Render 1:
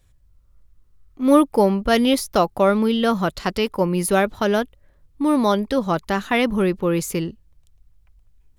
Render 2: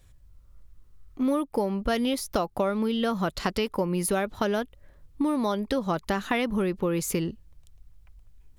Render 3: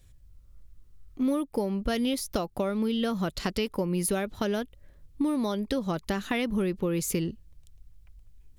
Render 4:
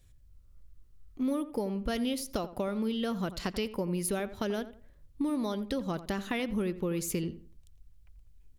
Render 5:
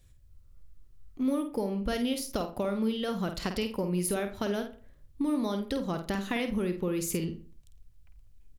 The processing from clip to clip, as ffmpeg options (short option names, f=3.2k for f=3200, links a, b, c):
-af "acompressor=threshold=-26dB:ratio=6,volume=2.5dB"
-af "equalizer=f=1k:w=0.75:g=-6.5"
-filter_complex "[0:a]asplit=2[a][b];[b]adelay=86,lowpass=f=1.9k:p=1,volume=-13.5dB,asplit=2[c][d];[d]adelay=86,lowpass=f=1.9k:p=1,volume=0.3,asplit=2[e][f];[f]adelay=86,lowpass=f=1.9k:p=1,volume=0.3[g];[a][c][e][g]amix=inputs=4:normalize=0,volume=-4dB"
-filter_complex "[0:a]asplit=2[a][b];[b]adelay=50,volume=-8dB[c];[a][c]amix=inputs=2:normalize=0,volume=1dB"